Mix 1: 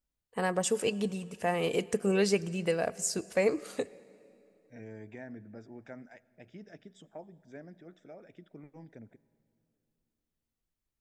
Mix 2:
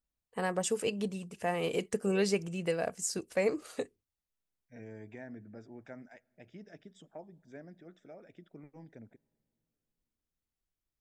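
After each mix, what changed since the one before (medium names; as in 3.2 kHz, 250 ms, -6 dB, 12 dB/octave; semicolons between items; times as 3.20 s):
first voice: send off; second voice: send -9.0 dB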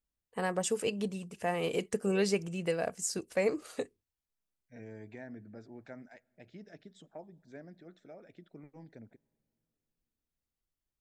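second voice: remove Butterworth band-stop 4.2 kHz, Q 4.9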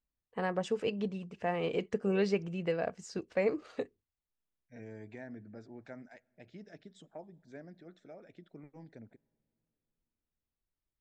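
first voice: add distance through air 190 m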